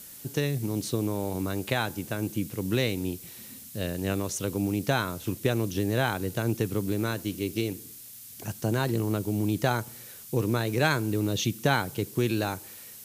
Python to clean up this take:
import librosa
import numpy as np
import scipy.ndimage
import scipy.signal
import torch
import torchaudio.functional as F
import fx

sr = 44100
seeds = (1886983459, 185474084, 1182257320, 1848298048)

y = fx.noise_reduce(x, sr, print_start_s=7.88, print_end_s=8.38, reduce_db=29.0)